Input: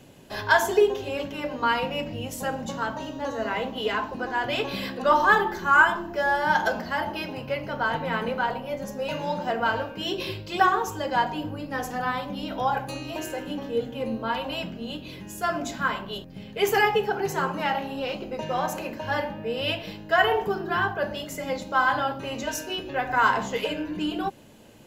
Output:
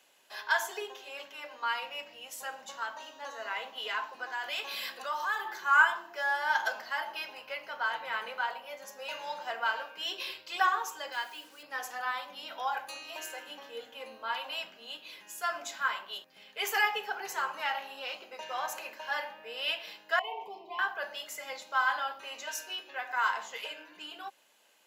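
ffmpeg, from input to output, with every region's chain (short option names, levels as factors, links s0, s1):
-filter_complex "[0:a]asettb=1/sr,asplit=3[s0][s1][s2];[s0]atrim=end=4.324[s3];[s1]atrim=start=4.32:end=5.48,asetpts=PTS-STARTPTS,afade=t=in:d=0.004:c=qsin,afade=t=out:st=1.156:d=0.004:c=qsin,highshelf=f=5500:g=8,acompressor=threshold=0.0501:ratio=2.5:attack=3.2:release=140:knee=1:detection=peak[s4];[s2]atrim=start=5.476[s5];[s3][s4]acrossfade=d=0.004:c1=hsin:c2=qsin[s6];[s6][s5]acrossfade=d=0.004:c1=qsin:c2=hsin,asettb=1/sr,asplit=3[s7][s8][s9];[s7]atrim=end=11.124[s10];[s8]atrim=start=11.12:end=11.63,asetpts=PTS-STARTPTS,afade=t=in:d=0.004:c=qsin,afade=t=out:st=0.506:d=0.004:c=qsin,highpass=240,acrusher=bits=7:mix=0:aa=0.5,equalizer=f=780:w=1.1:g=-10.5[s11];[s9]atrim=start=11.626[s12];[s10][s11]acrossfade=d=0.004:c1=hsin:c2=qsin[s13];[s13][s12]acrossfade=d=0.004:c1=qsin:c2=hsin,asettb=1/sr,asplit=3[s14][s15][s16];[s14]atrim=end=20.194[s17];[s15]atrim=start=20.19:end=20.79,asetpts=PTS-STARTPTS,afade=t=in:d=0.004:c=qsin,afade=t=out:st=0.596:d=0.004:c=qsin,bass=f=250:g=-5,treble=f=4000:g=-15,acompressor=threshold=0.0631:ratio=3:attack=3.2:release=140:knee=1:detection=peak,asuperstop=centerf=1500:order=12:qfactor=1.4[s18];[s16]atrim=start=20.786[s19];[s17][s18]acrossfade=d=0.004:c1=hsin:c2=qsin[s20];[s20][s19]acrossfade=d=0.004:c1=qsin:c2=hsin,highpass=1000,dynaudnorm=f=340:g=17:m=1.5,volume=0.473"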